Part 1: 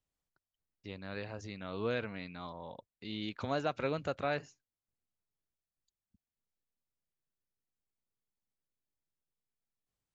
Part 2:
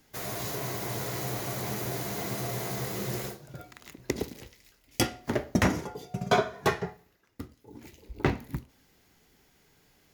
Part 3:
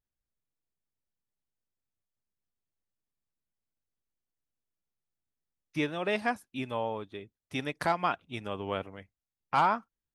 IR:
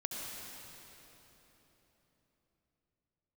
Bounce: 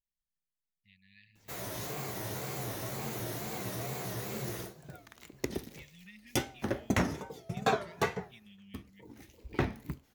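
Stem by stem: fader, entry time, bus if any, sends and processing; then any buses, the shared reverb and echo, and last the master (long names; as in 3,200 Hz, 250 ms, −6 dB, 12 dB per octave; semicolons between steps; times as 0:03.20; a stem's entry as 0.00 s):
−10.0 dB, 0.00 s, bus A, no send, low-pass that shuts in the quiet parts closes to 1,500 Hz, open at −31.5 dBFS; low-shelf EQ 490 Hz −10.5 dB
−4.5 dB, 1.35 s, no bus, no send, notch filter 4,900 Hz, Q 19; tape wow and flutter 150 cents
−8.0 dB, 0.00 s, bus A, no send, comb filter 4.9 ms, depth 72%
bus A: 0.0 dB, linear-phase brick-wall band-stop 230–1,700 Hz; downward compressor 3 to 1, threshold −55 dBFS, peak gain reduction 14 dB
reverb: not used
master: no processing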